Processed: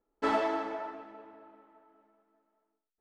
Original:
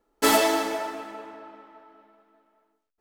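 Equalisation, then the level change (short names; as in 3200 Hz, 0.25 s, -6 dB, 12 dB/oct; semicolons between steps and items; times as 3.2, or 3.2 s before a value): dynamic EQ 1200 Hz, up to +5 dB, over -37 dBFS, Q 0.92; tape spacing loss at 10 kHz 30 dB; -8.0 dB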